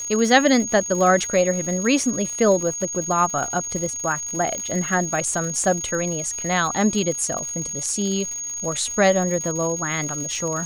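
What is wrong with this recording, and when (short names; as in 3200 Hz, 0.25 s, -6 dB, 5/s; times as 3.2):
crackle 200/s -29 dBFS
tone 6600 Hz -27 dBFS
4.58 pop -15 dBFS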